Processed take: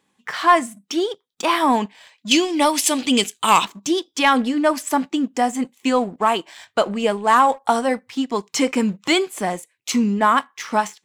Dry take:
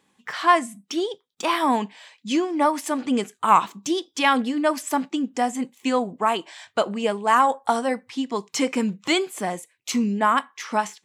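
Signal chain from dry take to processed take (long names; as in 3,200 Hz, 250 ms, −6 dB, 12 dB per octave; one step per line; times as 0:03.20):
0:02.31–0:03.65: high shelf with overshoot 2,100 Hz +10.5 dB, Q 1.5
leveller curve on the samples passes 1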